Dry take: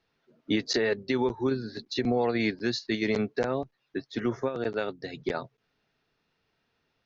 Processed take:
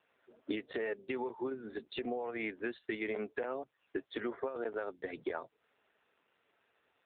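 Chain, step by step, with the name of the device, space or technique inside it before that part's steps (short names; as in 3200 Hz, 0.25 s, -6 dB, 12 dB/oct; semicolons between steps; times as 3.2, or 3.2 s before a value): 0.7–2.19 notch 1600 Hz, Q 14; 4.48–5.18 dynamic EQ 2800 Hz, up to -8 dB, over -60 dBFS, Q 6.5; voicemail (BPF 370–3000 Hz; compressor 6:1, threshold -40 dBFS, peak gain reduction 15 dB; gain +6 dB; AMR-NB 7.4 kbps 8000 Hz)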